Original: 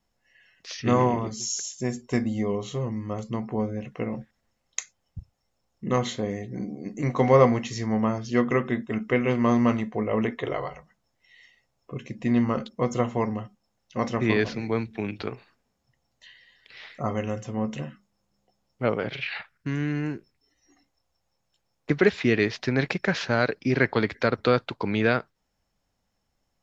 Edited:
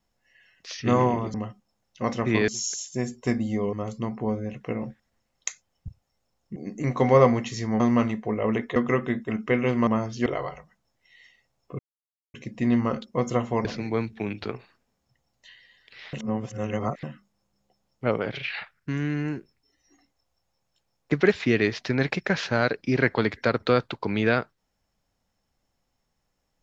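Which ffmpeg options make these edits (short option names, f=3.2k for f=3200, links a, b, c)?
-filter_complex "[0:a]asplit=13[a][b][c][d][e][f][g][h][i][j][k][l][m];[a]atrim=end=1.342[n];[b]atrim=start=13.288:end=14.432[o];[c]atrim=start=1.338:end=2.592[p];[d]atrim=start=3.038:end=5.872[q];[e]atrim=start=6.748:end=7.992[r];[f]atrim=start=9.488:end=10.452[s];[g]atrim=start=8.378:end=9.492[t];[h]atrim=start=7.988:end=8.382[u];[i]atrim=start=10.448:end=11.98,asetpts=PTS-STARTPTS,afade=t=out:st=1.528:d=0.004:c=hsin,apad=pad_dur=0.55[v];[j]atrim=start=11.98:end=13.292,asetpts=PTS-STARTPTS,afade=t=in:d=0.004:c=hsin[w];[k]atrim=start=14.428:end=16.912[x];[l]atrim=start=16.908:end=17.812,asetpts=PTS-STARTPTS,areverse[y];[m]atrim=start=17.808[z];[n][o]acrossfade=d=0.004:c1=hsin:c2=hsin[aa];[aa][p]acrossfade=d=0.004:c1=hsin:c2=hsin[ab];[ab][q]acrossfade=d=0.004:c1=hsin:c2=hsin[ac];[ac][r]acrossfade=d=0.004:c1=hsin:c2=hsin[ad];[ad][s]acrossfade=d=0.004:c1=hsin:c2=hsin[ae];[ae][t]acrossfade=d=0.004:c1=hsin:c2=hsin[af];[af][u]acrossfade=d=0.004:c1=hsin:c2=hsin[ag];[v][w]concat=n=2:v=0:a=1[ah];[ag][ah]acrossfade=d=0.004:c1=hsin:c2=hsin[ai];[ai][x]acrossfade=d=0.004:c1=hsin:c2=hsin[aj];[aj][y]acrossfade=d=0.004:c1=hsin:c2=hsin[ak];[ak][z]acrossfade=d=0.004:c1=hsin:c2=hsin"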